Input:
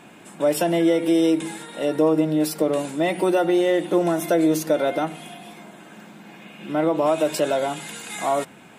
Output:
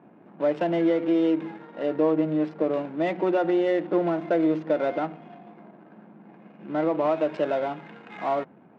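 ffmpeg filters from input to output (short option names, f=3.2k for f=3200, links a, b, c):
-af "adynamicsmooth=sensitivity=4:basefreq=680,highpass=130,lowpass=2.8k,volume=-3.5dB"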